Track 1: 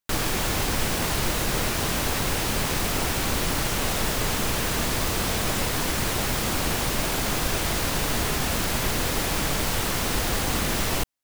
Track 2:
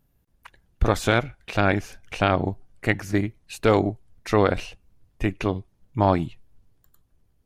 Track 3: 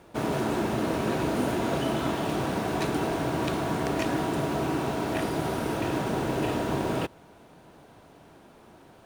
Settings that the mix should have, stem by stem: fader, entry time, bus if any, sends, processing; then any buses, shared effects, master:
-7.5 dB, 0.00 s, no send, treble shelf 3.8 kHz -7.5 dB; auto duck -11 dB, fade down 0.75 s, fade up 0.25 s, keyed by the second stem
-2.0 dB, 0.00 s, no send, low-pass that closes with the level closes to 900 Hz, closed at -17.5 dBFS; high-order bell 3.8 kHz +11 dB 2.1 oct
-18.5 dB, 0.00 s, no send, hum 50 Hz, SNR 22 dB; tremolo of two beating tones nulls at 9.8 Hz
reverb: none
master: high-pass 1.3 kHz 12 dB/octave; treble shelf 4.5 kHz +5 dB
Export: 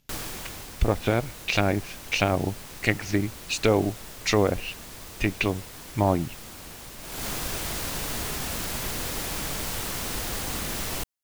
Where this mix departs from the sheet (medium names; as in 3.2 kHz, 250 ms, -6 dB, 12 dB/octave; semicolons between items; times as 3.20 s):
stem 1: missing treble shelf 3.8 kHz -7.5 dB; stem 3: muted; master: missing high-pass 1.3 kHz 12 dB/octave